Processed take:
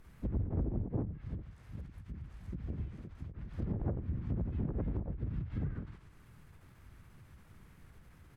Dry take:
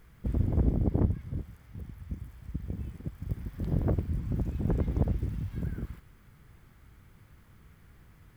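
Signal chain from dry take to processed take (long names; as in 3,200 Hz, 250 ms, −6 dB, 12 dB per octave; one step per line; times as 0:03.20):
pitch-shifted copies added −4 semitones −2 dB, +3 semitones −10 dB, +4 semitones −8 dB
downward compressor 3 to 1, threshold −28 dBFS, peak gain reduction 9.5 dB
treble cut that deepens with the level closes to 1,700 Hz, closed at −26.5 dBFS
every ending faded ahead of time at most 120 dB per second
level −3 dB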